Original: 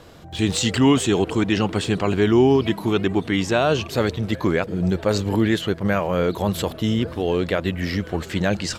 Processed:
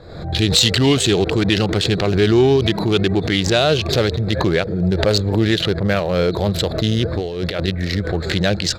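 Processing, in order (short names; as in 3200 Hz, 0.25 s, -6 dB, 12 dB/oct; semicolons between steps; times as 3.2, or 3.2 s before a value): Wiener smoothing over 15 samples; fifteen-band EQ 250 Hz -8 dB, 1000 Hz -9 dB, 4000 Hz +11 dB; 7.03–7.68 negative-ratio compressor -27 dBFS, ratio -0.5; sine folder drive 8 dB, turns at 0.5 dBFS; backwards sustainer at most 67 dB/s; gain -6 dB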